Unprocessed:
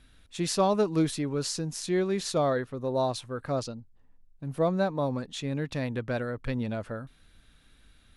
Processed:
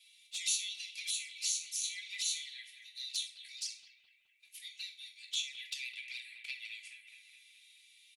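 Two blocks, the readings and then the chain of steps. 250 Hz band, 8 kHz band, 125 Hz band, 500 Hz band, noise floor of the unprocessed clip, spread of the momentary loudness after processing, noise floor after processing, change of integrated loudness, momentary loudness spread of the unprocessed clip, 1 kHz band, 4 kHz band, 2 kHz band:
below −40 dB, +2.5 dB, below −40 dB, below −40 dB, −60 dBFS, 18 LU, −68 dBFS, −8.5 dB, 13 LU, below −40 dB, +2.0 dB, −4.0 dB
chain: peak hold with a decay on every bin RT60 0.33 s
Butterworth high-pass 2,100 Hz 96 dB per octave
comb filter 3 ms, depth 69%
in parallel at −2 dB: downward compressor 16 to 1, threshold −43 dBFS, peak gain reduction 18.5 dB
on the sum: flanger swept by the level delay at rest 5.6 ms, full sweep at −32 dBFS
on a send: bucket-brigade delay 211 ms, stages 4,096, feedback 65%, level −8 dB

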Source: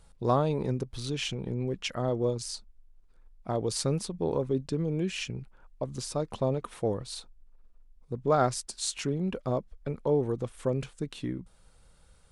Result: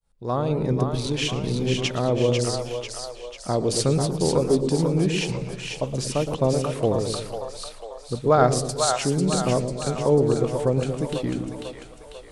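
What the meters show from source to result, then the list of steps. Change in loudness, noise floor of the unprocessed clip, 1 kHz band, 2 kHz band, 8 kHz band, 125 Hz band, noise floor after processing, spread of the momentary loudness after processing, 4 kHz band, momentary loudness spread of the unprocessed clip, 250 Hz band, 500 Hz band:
+7.5 dB, −59 dBFS, +7.0 dB, +8.5 dB, +8.5 dB, +8.0 dB, −43 dBFS, 13 LU, +8.5 dB, 11 LU, +8.0 dB, +8.0 dB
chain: fade in at the beginning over 0.74 s
echo with a time of its own for lows and highs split 530 Hz, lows 116 ms, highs 495 ms, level −4.5 dB
feedback echo with a swinging delay time 116 ms, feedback 49%, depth 217 cents, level −16.5 dB
level +6.5 dB

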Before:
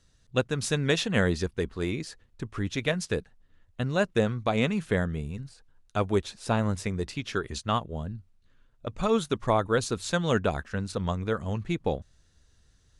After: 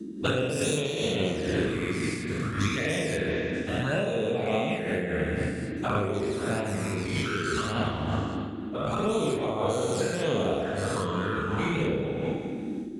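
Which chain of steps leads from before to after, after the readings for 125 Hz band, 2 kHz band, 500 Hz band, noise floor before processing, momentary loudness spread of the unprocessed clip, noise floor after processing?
−0.5 dB, +1.5 dB, +1.5 dB, −64 dBFS, 11 LU, −35 dBFS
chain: every bin's largest magnitude spread in time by 240 ms
in parallel at −8 dB: soft clipping −18.5 dBFS, distortion −10 dB
on the sum: high-shelf EQ 2,500 Hz +8 dB
on a send: echo through a band-pass that steps 160 ms, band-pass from 310 Hz, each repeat 1.4 octaves, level −11.5 dB
on the sum: flanger swept by the level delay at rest 3.3 ms, full sweep at −12 dBFS
high-pass filter 72 Hz
parametric band 5,200 Hz −8 dB 1.4 octaves
spring reverb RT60 1.7 s, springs 39/60 ms, chirp 50 ms, DRR −1 dB
noise in a band 190–350 Hz −33 dBFS
downward compressor, threshold −23 dBFS, peak gain reduction 12 dB
amplitude modulation by smooth noise, depth 65%
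level +2 dB

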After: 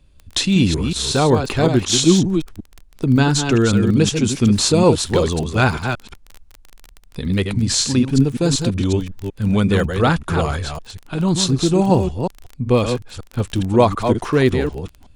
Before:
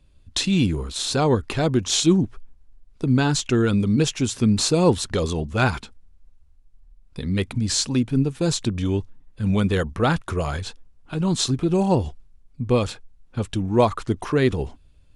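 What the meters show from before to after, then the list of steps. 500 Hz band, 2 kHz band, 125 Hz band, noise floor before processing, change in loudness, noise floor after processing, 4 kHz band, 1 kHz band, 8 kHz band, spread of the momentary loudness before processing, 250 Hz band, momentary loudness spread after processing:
+5.0 dB, +5.0 dB, +5.0 dB, −54 dBFS, +4.5 dB, −48 dBFS, +5.0 dB, +5.0 dB, +5.0 dB, 11 LU, +5.0 dB, 11 LU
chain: delay that plays each chunk backwards 186 ms, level −6.5 dB
surface crackle 19 per second −29 dBFS
level +4 dB

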